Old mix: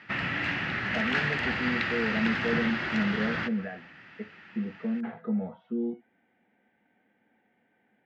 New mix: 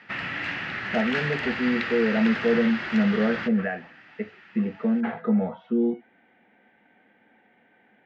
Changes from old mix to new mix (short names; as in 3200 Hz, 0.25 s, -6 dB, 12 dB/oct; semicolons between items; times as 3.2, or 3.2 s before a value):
speech +11.0 dB; master: add low shelf 320 Hz -6 dB